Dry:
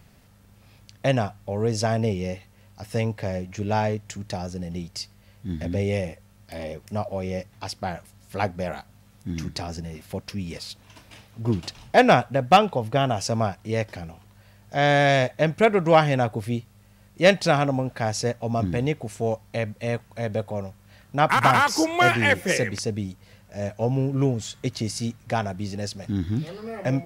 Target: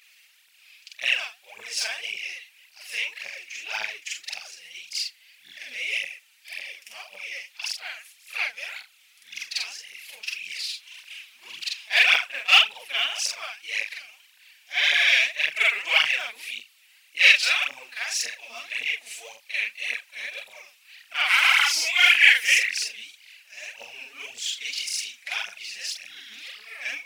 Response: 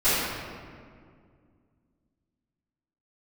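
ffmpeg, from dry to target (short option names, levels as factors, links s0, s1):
-af "afftfilt=real='re':imag='-im':win_size=4096:overlap=0.75,aphaser=in_gain=1:out_gain=1:delay=4.8:decay=0.71:speed=1.8:type=triangular,highpass=f=2500:t=q:w=3.1,volume=1.68"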